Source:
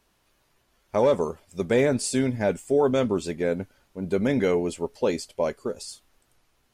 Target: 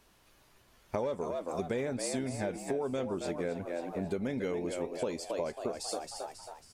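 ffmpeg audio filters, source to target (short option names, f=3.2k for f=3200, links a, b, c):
-filter_complex "[0:a]asplit=2[a][b];[b]asplit=5[c][d][e][f][g];[c]adelay=272,afreqshift=81,volume=-9.5dB[h];[d]adelay=544,afreqshift=162,volume=-16.4dB[i];[e]adelay=816,afreqshift=243,volume=-23.4dB[j];[f]adelay=1088,afreqshift=324,volume=-30.3dB[k];[g]adelay=1360,afreqshift=405,volume=-37.2dB[l];[h][i][j][k][l]amix=inputs=5:normalize=0[m];[a][m]amix=inputs=2:normalize=0,acompressor=threshold=-35dB:ratio=6,volume=3dB"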